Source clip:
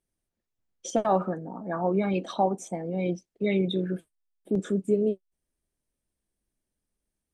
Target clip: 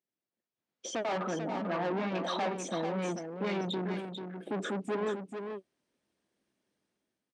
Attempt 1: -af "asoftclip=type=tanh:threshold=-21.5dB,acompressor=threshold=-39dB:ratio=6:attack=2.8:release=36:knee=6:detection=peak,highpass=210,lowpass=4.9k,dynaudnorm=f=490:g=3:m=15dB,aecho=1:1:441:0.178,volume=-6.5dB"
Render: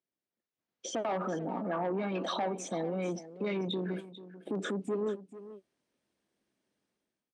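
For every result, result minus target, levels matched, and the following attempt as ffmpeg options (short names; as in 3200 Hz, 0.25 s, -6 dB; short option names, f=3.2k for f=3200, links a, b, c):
echo-to-direct -8 dB; soft clip: distortion -8 dB
-af "asoftclip=type=tanh:threshold=-21.5dB,acompressor=threshold=-39dB:ratio=6:attack=2.8:release=36:knee=6:detection=peak,highpass=210,lowpass=4.9k,dynaudnorm=f=490:g=3:m=15dB,aecho=1:1:441:0.447,volume=-6.5dB"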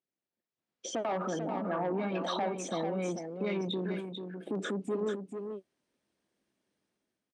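soft clip: distortion -8 dB
-af "asoftclip=type=tanh:threshold=-32.5dB,acompressor=threshold=-39dB:ratio=6:attack=2.8:release=36:knee=6:detection=peak,highpass=210,lowpass=4.9k,dynaudnorm=f=490:g=3:m=15dB,aecho=1:1:441:0.447,volume=-6.5dB"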